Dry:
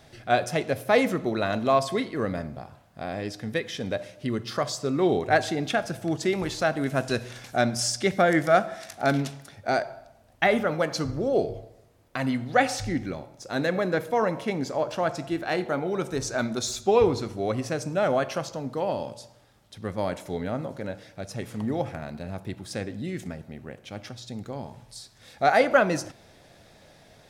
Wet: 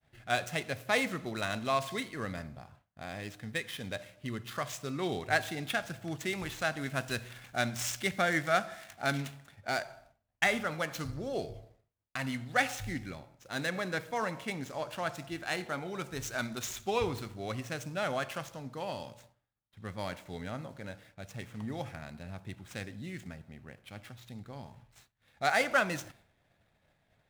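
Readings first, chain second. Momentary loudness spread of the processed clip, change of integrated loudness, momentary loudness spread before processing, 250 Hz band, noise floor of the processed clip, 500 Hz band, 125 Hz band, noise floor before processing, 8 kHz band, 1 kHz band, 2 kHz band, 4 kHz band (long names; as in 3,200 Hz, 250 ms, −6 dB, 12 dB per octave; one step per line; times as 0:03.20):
17 LU, −8.0 dB, 16 LU, −10.5 dB, −74 dBFS, −11.5 dB, −7.5 dB, −56 dBFS, −6.0 dB, −8.0 dB, −3.5 dB, −4.5 dB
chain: running median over 9 samples
downward expander −47 dBFS
guitar amp tone stack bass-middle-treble 5-5-5
one half of a high-frequency compander decoder only
level +8 dB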